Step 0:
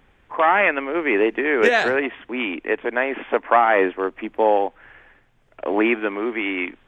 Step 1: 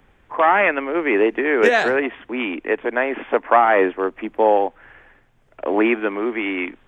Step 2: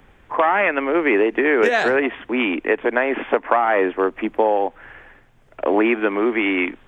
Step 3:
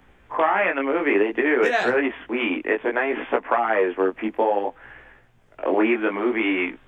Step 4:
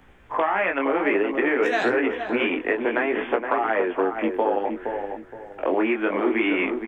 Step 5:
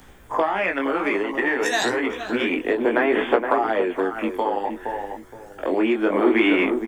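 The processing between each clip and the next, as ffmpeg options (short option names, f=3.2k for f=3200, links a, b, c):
-filter_complex "[0:a]acrossover=split=140|970[a][b][c];[a]alimiter=level_in=23.5dB:limit=-24dB:level=0:latency=1,volume=-23.5dB[d];[d][b][c]amix=inputs=3:normalize=0,equalizer=f=3.1k:t=o:w=1.7:g=-3,volume=2dB"
-af "acompressor=threshold=-18dB:ratio=6,volume=4.5dB"
-af "flanger=delay=15.5:depth=6.7:speed=0.59"
-filter_complex "[0:a]acompressor=threshold=-21dB:ratio=3,asplit=2[a][b];[b]adelay=469,lowpass=f=1.1k:p=1,volume=-5dB,asplit=2[c][d];[d]adelay=469,lowpass=f=1.1k:p=1,volume=0.32,asplit=2[e][f];[f]adelay=469,lowpass=f=1.1k:p=1,volume=0.32,asplit=2[g][h];[h]adelay=469,lowpass=f=1.1k:p=1,volume=0.32[i];[c][e][g][i]amix=inputs=4:normalize=0[j];[a][j]amix=inputs=2:normalize=0,volume=1.5dB"
-af "aexciter=amount=4.2:drive=7.6:freq=3.8k,aphaser=in_gain=1:out_gain=1:delay=1.1:decay=0.42:speed=0.31:type=sinusoidal"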